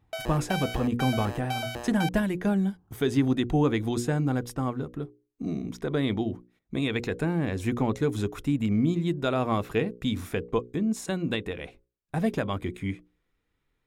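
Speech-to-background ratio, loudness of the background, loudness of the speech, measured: 6.5 dB, -35.0 LUFS, -28.5 LUFS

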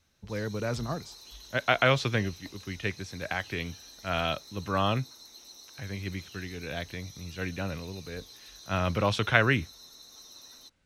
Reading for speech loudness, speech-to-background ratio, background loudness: -30.5 LUFS, 17.5 dB, -48.0 LUFS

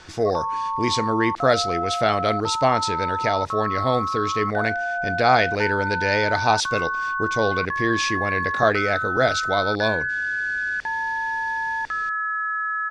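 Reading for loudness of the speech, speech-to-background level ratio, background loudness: -23.5 LUFS, 1.5 dB, -25.0 LUFS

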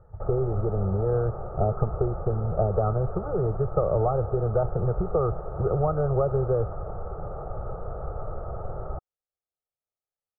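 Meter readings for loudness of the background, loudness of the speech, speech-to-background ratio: -36.5 LUFS, -27.0 LUFS, 9.5 dB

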